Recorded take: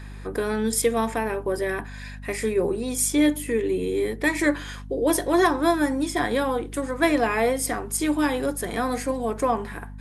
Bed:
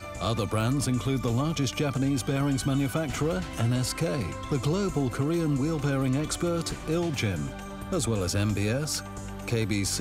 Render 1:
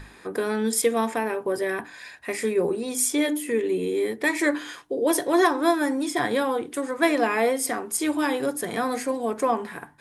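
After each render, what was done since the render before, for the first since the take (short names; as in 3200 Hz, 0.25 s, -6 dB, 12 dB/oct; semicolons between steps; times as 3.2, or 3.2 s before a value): notches 50/100/150/200/250/300 Hz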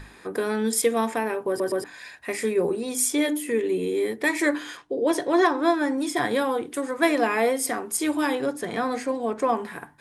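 1.48 stutter in place 0.12 s, 3 plays; 4.77–5.98 air absorption 66 m; 8.35–9.49 air absorption 57 m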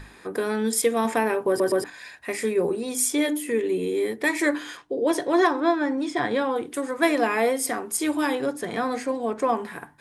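1.05–1.9 gain +3.5 dB; 5.6–6.56 air absorption 94 m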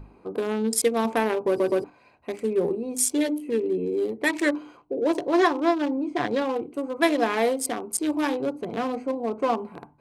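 Wiener smoothing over 25 samples; dynamic EQ 5100 Hz, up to +4 dB, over -43 dBFS, Q 0.74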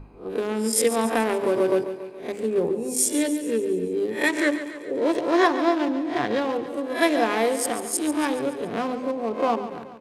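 spectral swells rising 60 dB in 0.33 s; feedback echo 0.141 s, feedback 57%, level -12 dB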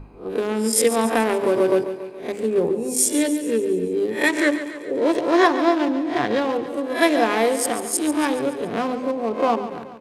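gain +3 dB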